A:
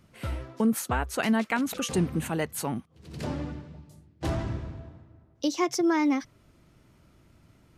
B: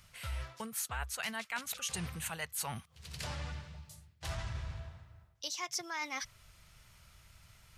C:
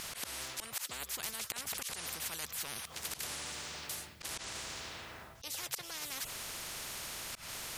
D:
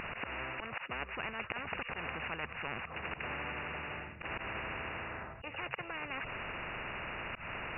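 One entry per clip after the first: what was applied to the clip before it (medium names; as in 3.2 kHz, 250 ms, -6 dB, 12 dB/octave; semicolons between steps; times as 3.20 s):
amplifier tone stack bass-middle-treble 10-0-10; reverse; compression 4:1, threshold -46 dBFS, peak gain reduction 14.5 dB; reverse; trim +9 dB
slow attack 186 ms; spectrum-flattening compressor 10:1; trim +6 dB
brick-wall FIR low-pass 2.9 kHz; trim +7 dB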